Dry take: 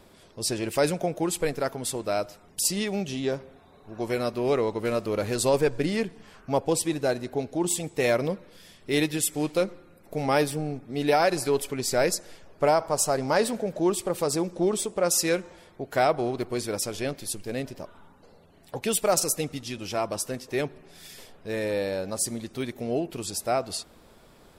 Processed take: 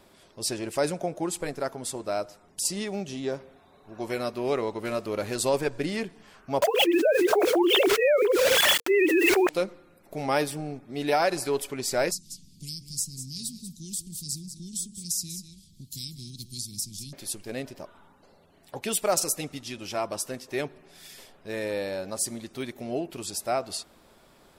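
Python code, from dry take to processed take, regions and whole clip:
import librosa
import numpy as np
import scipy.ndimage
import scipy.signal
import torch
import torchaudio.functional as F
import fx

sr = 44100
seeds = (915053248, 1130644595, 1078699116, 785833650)

y = fx.chain(x, sr, fx.lowpass(hz=11000.0, slope=12),
    fx.peak_eq(hz=2800.0, db=-4.5, octaves=1.4), at=(0.56, 3.35))
y = fx.chain(y, sr, fx.sine_speech(),
    fx.quant_dither(seeds[0], bits=10, dither='none'),
    fx.env_flatten(amount_pct=100), at=(6.62, 9.49))
y = fx.chain(y, sr, fx.cheby2_bandstop(low_hz=570.0, high_hz=1500.0, order=4, stop_db=70),
    fx.echo_single(ms=187, db=-12.5),
    fx.band_squash(depth_pct=70), at=(12.11, 17.13))
y = fx.low_shelf(y, sr, hz=200.0, db=-6.0)
y = fx.notch(y, sr, hz=470.0, q=12.0)
y = y * librosa.db_to_amplitude(-1.0)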